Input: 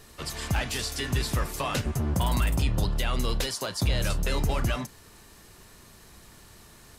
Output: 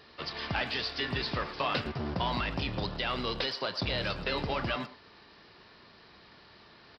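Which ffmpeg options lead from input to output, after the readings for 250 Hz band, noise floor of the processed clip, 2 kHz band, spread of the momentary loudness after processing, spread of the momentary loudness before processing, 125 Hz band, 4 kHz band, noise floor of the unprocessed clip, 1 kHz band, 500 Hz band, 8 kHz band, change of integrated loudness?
-4.5 dB, -57 dBFS, 0.0 dB, 3 LU, 4 LU, -9.5 dB, 0.0 dB, -52 dBFS, 0.0 dB, -1.0 dB, -24.5 dB, -4.0 dB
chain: -filter_complex "[0:a]highpass=f=300:p=1,aresample=11025,acrusher=bits=4:mode=log:mix=0:aa=0.000001,aresample=44100,asplit=2[a][b];[b]adelay=110,highpass=300,lowpass=3.4k,asoftclip=type=hard:threshold=-26dB,volume=-14dB[c];[a][c]amix=inputs=2:normalize=0"

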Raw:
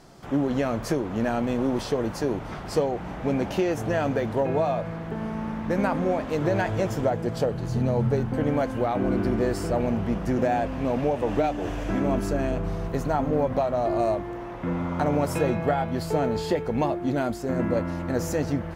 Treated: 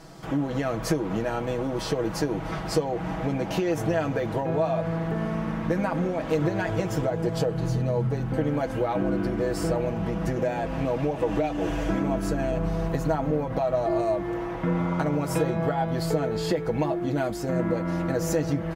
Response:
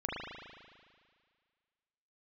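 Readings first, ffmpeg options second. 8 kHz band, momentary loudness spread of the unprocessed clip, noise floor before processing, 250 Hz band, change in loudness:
+2.0 dB, 5 LU, -35 dBFS, -1.0 dB, -0.5 dB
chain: -af "acompressor=threshold=-26dB:ratio=6,aecho=1:1:6.2:0.67,volume=2.5dB"

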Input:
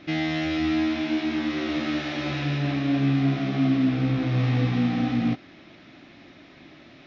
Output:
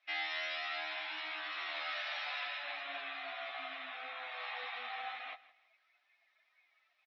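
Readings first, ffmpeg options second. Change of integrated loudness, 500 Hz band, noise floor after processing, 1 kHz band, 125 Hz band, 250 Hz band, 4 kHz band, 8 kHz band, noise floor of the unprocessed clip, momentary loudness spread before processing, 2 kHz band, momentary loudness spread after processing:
-15.0 dB, -16.5 dB, -76 dBFS, -7.0 dB, under -40 dB, under -40 dB, -6.0 dB, n/a, -50 dBFS, 5 LU, -5.5 dB, 6 LU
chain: -filter_complex "[0:a]highpass=f=770:w=0.5412,highpass=f=770:w=1.3066,afftdn=nr=20:nf=-44,flanger=delay=9.9:depth=2.6:regen=-24:speed=0.33:shape=triangular,asplit=2[a][b];[b]aecho=0:1:163|326|489:0.112|0.0337|0.0101[c];[a][c]amix=inputs=2:normalize=0,volume=-1.5dB"

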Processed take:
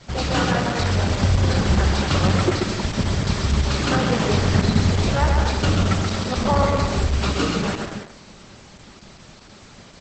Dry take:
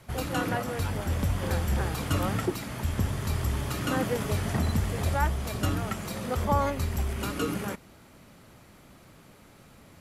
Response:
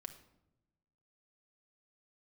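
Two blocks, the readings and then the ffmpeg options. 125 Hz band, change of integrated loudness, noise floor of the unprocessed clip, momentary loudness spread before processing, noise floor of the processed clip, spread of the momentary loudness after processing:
+9.0 dB, +9.0 dB, -54 dBFS, 5 LU, -46 dBFS, 5 LU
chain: -filter_complex "[0:a]acrossover=split=5100[a][b];[b]acompressor=threshold=-47dB:ratio=4:attack=1:release=60[c];[a][c]amix=inputs=2:normalize=0,equalizer=f=4.7k:t=o:w=0.98:g=8,volume=16.5dB,asoftclip=hard,volume=-16.5dB,aecho=1:1:130|227.5|300.6|355.5|396.6:0.631|0.398|0.251|0.158|0.1,asplit=2[d][e];[1:a]atrim=start_sample=2205,atrim=end_sample=3087,asetrate=39690,aresample=44100[f];[e][f]afir=irnorm=-1:irlink=0,volume=6.5dB[g];[d][g]amix=inputs=2:normalize=0" -ar 48000 -c:a libopus -b:a 10k

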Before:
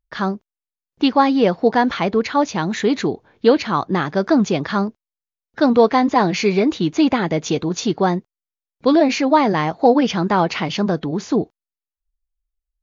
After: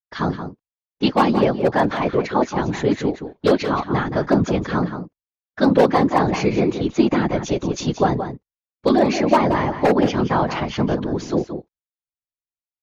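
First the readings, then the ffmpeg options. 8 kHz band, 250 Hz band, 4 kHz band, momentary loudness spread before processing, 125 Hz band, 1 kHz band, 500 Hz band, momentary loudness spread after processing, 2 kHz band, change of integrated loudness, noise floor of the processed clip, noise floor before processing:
n/a, -2.0 dB, -4.0 dB, 7 LU, +2.0 dB, -2.0 dB, -1.5 dB, 8 LU, -2.0 dB, -1.5 dB, under -85 dBFS, under -85 dBFS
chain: -filter_complex "[0:a]agate=range=-33dB:threshold=-39dB:ratio=3:detection=peak,adynamicequalizer=threshold=0.0126:dfrequency=4300:dqfactor=0.71:tfrequency=4300:tqfactor=0.71:attack=5:release=100:ratio=0.375:range=3.5:mode=cutabove:tftype=bell,aeval=exprs='0.501*(abs(mod(val(0)/0.501+3,4)-2)-1)':c=same,afftfilt=real='hypot(re,im)*cos(2*PI*random(0))':imag='hypot(re,im)*sin(2*PI*random(1))':win_size=512:overlap=0.75,asplit=2[a][b];[b]adelay=174.9,volume=-9dB,highshelf=f=4k:g=-3.94[c];[a][c]amix=inputs=2:normalize=0,volume=4.5dB"

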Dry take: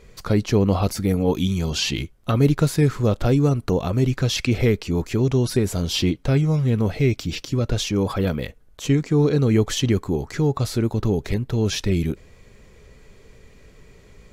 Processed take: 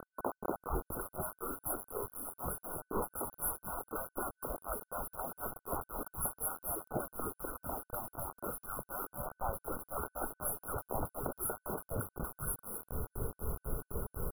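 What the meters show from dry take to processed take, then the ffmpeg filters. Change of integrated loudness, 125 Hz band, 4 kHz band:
-18.5 dB, -26.5 dB, under -40 dB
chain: -filter_complex "[0:a]equalizer=f=5.1k:w=0.36:g=13,afftfilt=real='re*lt(hypot(re,im),0.0891)':imag='im*lt(hypot(re,im),0.0891)':win_size=1024:overlap=0.75,lowshelf=f=420:g=5.5,acrossover=split=230|1100[a][b][c];[a]adelay=700[d];[c]adelay=750[e];[d][b][e]amix=inputs=3:normalize=0,acompressor=threshold=-38dB:ratio=5,tremolo=f=4:d=0.94,bandreject=f=95.08:t=h:w=4,bandreject=f=190.16:t=h:w=4,bandreject=f=285.24:t=h:w=4,acrusher=bits=7:mix=0:aa=0.000001,afftfilt=real='re*(1-between(b*sr/4096,1500,10000))':imag='im*(1-between(b*sr/4096,1500,10000))':win_size=4096:overlap=0.75,volume=10dB"

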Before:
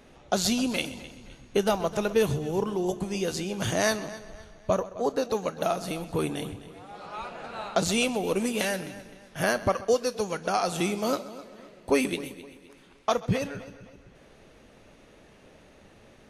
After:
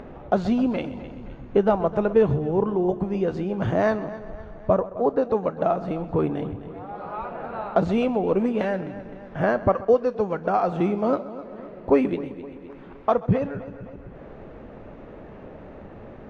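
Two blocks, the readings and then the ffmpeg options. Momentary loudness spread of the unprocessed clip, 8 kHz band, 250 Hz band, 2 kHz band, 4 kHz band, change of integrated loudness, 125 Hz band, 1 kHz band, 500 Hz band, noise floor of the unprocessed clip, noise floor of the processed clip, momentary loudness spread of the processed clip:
17 LU, under -25 dB, +5.5 dB, -2.5 dB, under -10 dB, +4.5 dB, +5.5 dB, +4.5 dB, +5.5 dB, -55 dBFS, -42 dBFS, 21 LU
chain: -filter_complex "[0:a]lowpass=1.2k,asplit=2[a][b];[b]acompressor=mode=upward:threshold=-30dB:ratio=2.5,volume=-1dB[c];[a][c]amix=inputs=2:normalize=0"

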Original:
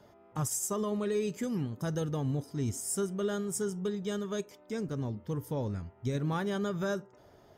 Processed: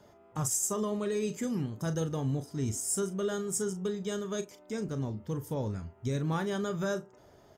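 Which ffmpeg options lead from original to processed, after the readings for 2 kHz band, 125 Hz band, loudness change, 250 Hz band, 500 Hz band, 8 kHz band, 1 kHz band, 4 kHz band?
+0.5 dB, +0.5 dB, +1.0 dB, 0.0 dB, +0.5 dB, +3.5 dB, +0.5 dB, +1.0 dB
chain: -filter_complex "[0:a]equalizer=f=7.1k:t=o:w=0.53:g=5,asplit=2[a][b];[b]adelay=37,volume=-11dB[c];[a][c]amix=inputs=2:normalize=0"

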